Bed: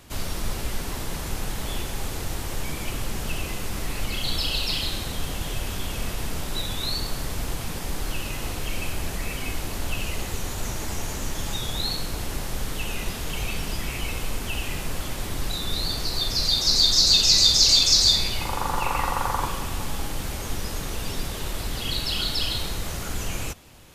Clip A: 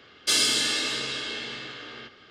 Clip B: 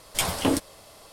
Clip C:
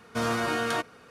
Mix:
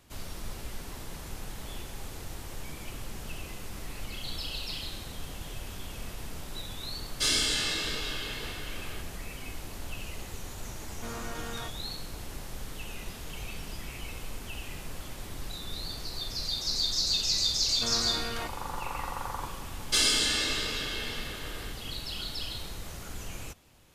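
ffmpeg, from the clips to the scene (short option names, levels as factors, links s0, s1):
-filter_complex "[1:a]asplit=2[s0][s1];[3:a]asplit=2[s2][s3];[0:a]volume=0.299[s4];[s0]flanger=delay=19.5:depth=5.2:speed=1.8,atrim=end=2.3,asetpts=PTS-STARTPTS,volume=0.841,afade=t=in:d=0.004:c=hsin,afade=t=out:st=2.296:d=0.004:c=hsin,adelay=6930[s5];[s2]atrim=end=1.1,asetpts=PTS-STARTPTS,volume=0.224,afade=t=in:d=0.004:c=hsin,afade=t=out:st=1.096:d=0.004:c=hsin,adelay=10870[s6];[s3]atrim=end=1.1,asetpts=PTS-STARTPTS,volume=0.355,afade=t=in:d=0.004:c=hsin,afade=t=out:st=1.096:d=0.004:c=hsin,adelay=17660[s7];[s1]atrim=end=2.3,asetpts=PTS-STARTPTS,volume=0.75,afade=t=in:d=0.004:c=hsin,afade=t=out:st=2.296:d=0.004:c=hsin,adelay=19650[s8];[s4][s5][s6][s7][s8]amix=inputs=5:normalize=0"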